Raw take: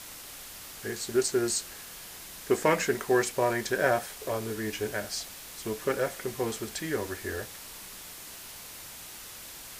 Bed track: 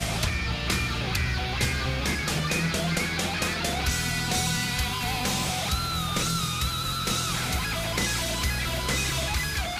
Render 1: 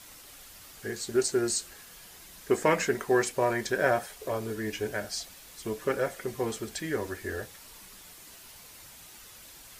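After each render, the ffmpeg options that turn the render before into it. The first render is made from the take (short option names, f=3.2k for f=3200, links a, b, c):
-af "afftdn=nr=7:nf=-45"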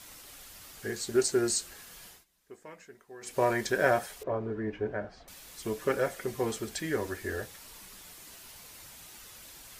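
-filter_complex "[0:a]asettb=1/sr,asplit=3[a][b][c];[a]atrim=end=4.234[d];[b]atrim=start=4.23:end=5.28,asetpts=PTS-STARTPTS,afade=t=in:d=0.004:c=qsin,afade=t=out:st=1.046:d=0.004:c=qsin,lowpass=1.3k[e];[c]atrim=start=5.276[f];[d][e]acrossfade=d=0.004:c1=hsin:c2=qsin[g];[g][f]acrossfade=d=0.004:c1=qsin:c2=hsin,asplit=3[h][i][j];[h]atrim=end=2.25,asetpts=PTS-STARTPTS,afade=t=out:st=2.07:d=0.18:silence=0.0630957[k];[i]atrim=start=2.25:end=3.21,asetpts=PTS-STARTPTS,volume=-24dB[l];[j]atrim=start=3.21,asetpts=PTS-STARTPTS,afade=t=in:d=0.18:silence=0.0630957[m];[k][l][m]concat=n=3:v=0:a=1"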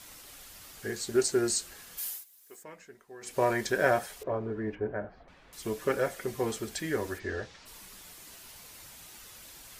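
-filter_complex "[0:a]asplit=3[a][b][c];[a]afade=t=out:st=1.97:d=0.02[d];[b]aemphasis=mode=production:type=riaa,afade=t=in:st=1.97:d=0.02,afade=t=out:st=2.62:d=0.02[e];[c]afade=t=in:st=2.62:d=0.02[f];[d][e][f]amix=inputs=3:normalize=0,asettb=1/sr,asplit=3[g][h][i];[g]atrim=end=4.754[j];[h]atrim=start=4.75:end=5.53,asetpts=PTS-STARTPTS,afade=t=in:d=0.004:c=qsin,afade=t=out:st=0.776:d=0.004:c=qsin,lowpass=2k[k];[i]atrim=start=5.526[l];[j][k]acrossfade=d=0.004:c1=hsin:c2=qsin[m];[m][l]acrossfade=d=0.004:c1=qsin:c2=hsin,asplit=3[n][o][p];[n]afade=t=out:st=7.18:d=0.02[q];[o]lowpass=f=5.8k:w=0.5412,lowpass=f=5.8k:w=1.3066,afade=t=in:st=7.18:d=0.02,afade=t=out:st=7.65:d=0.02[r];[p]afade=t=in:st=7.65:d=0.02[s];[q][r][s]amix=inputs=3:normalize=0"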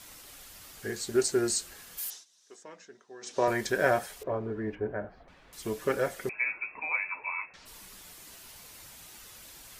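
-filter_complex "[0:a]asettb=1/sr,asplit=3[a][b][c];[a]atrim=end=2.104[d];[b]atrim=start=2.1:end=3.48,asetpts=PTS-STARTPTS,afade=t=in:d=0.004:c=qsin,afade=t=out:st=1.376:d=0.004:c=qsin,highpass=f=130:w=0.5412,highpass=f=130:w=1.3066,equalizer=f=150:t=q:w=4:g=-7,equalizer=f=2.2k:t=q:w=4:g=-5,equalizer=f=3.7k:t=q:w=4:g=6,equalizer=f=5.8k:t=q:w=4:g=8,lowpass=f=7.3k:w=0.5412,lowpass=f=7.3k:w=1.3066[e];[c]atrim=start=3.476[f];[d][e]acrossfade=d=0.004:c1=hsin:c2=qsin[g];[g][f]acrossfade=d=0.004:c1=qsin:c2=hsin,asettb=1/sr,asplit=3[h][i][j];[h]atrim=end=6.294[k];[i]atrim=start=6.29:end=7.54,asetpts=PTS-STARTPTS,afade=t=in:d=0.004:c=qsin,afade=t=out:st=1.246:d=0.004:c=qsin,lowpass=f=2.3k:t=q:w=0.5098,lowpass=f=2.3k:t=q:w=0.6013,lowpass=f=2.3k:t=q:w=0.9,lowpass=f=2.3k:t=q:w=2.563,afreqshift=-2700[l];[j]atrim=start=7.536[m];[k][l]acrossfade=d=0.004:c1=hsin:c2=qsin[n];[n][m]acrossfade=d=0.004:c1=qsin:c2=hsin"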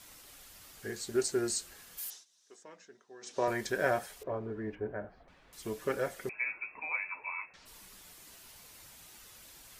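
-af "volume=-4.5dB"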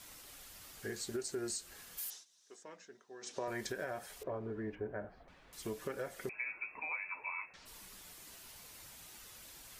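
-af "alimiter=level_in=2dB:limit=-24dB:level=0:latency=1:release=214,volume=-2dB,acompressor=threshold=-39dB:ratio=2"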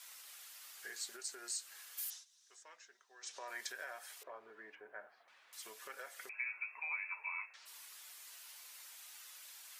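-af "highpass=1.1k"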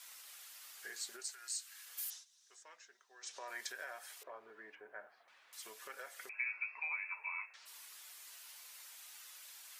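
-filter_complex "[0:a]asplit=3[a][b][c];[a]afade=t=out:st=1.31:d=0.02[d];[b]highpass=1.3k,afade=t=in:st=1.31:d=0.02,afade=t=out:st=1.85:d=0.02[e];[c]afade=t=in:st=1.85:d=0.02[f];[d][e][f]amix=inputs=3:normalize=0,asettb=1/sr,asplit=3[g][h][i];[g]atrim=end=6.394[j];[h]atrim=start=6.39:end=6.88,asetpts=PTS-STARTPTS,afade=t=in:d=0.004:c=qsin,afade=t=out:st=0.486:d=0.004:c=qsin,lowpass=f=4.8k:t=q:w=4.9[k];[i]atrim=start=6.876[l];[j][k]acrossfade=d=0.004:c1=hsin:c2=qsin[m];[m][l]acrossfade=d=0.004:c1=qsin:c2=hsin"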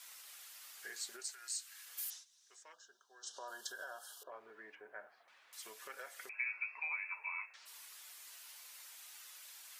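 -filter_complex "[0:a]asplit=3[a][b][c];[a]afade=t=out:st=2.72:d=0.02[d];[b]asuperstop=centerf=2200:order=20:qfactor=1.9,afade=t=in:st=2.72:d=0.02,afade=t=out:st=4.3:d=0.02[e];[c]afade=t=in:st=4.3:d=0.02[f];[d][e][f]amix=inputs=3:normalize=0"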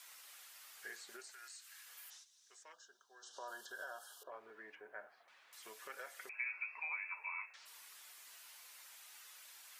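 -filter_complex "[0:a]acrossover=split=2700[a][b];[b]acompressor=threshold=-54dB:ratio=4:attack=1:release=60[c];[a][c]amix=inputs=2:normalize=0"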